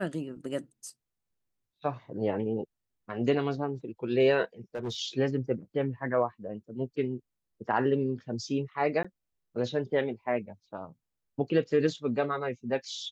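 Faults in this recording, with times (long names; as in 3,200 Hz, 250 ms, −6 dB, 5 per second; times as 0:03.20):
0:04.75–0:04.96: clipping −30 dBFS
0:09.03–0:09.04: drop-out 15 ms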